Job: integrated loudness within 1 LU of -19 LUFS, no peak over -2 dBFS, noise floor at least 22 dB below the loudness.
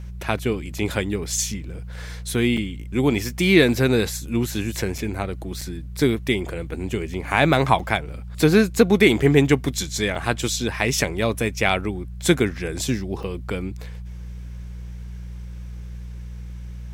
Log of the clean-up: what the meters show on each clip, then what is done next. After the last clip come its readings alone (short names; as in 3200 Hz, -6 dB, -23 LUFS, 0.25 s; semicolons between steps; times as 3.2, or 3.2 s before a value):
dropouts 7; longest dropout 4.5 ms; hum 60 Hz; harmonics up to 180 Hz; hum level -32 dBFS; loudness -22.0 LUFS; peak -2.0 dBFS; loudness target -19.0 LUFS
-> interpolate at 2.57/4.98/5.61/7.79/10.15/11.69/13.23, 4.5 ms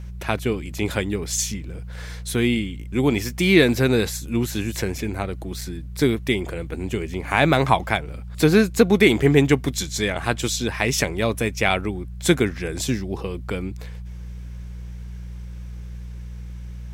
dropouts 0; hum 60 Hz; harmonics up to 180 Hz; hum level -32 dBFS
-> de-hum 60 Hz, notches 3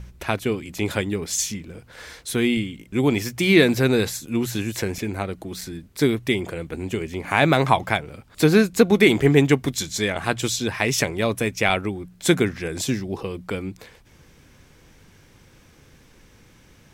hum none; loudness -22.0 LUFS; peak -2.0 dBFS; loudness target -19.0 LUFS
-> gain +3 dB; limiter -2 dBFS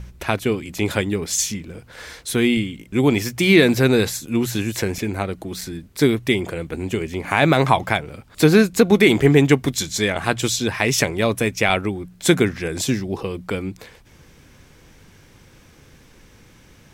loudness -19.5 LUFS; peak -2.0 dBFS; noise floor -50 dBFS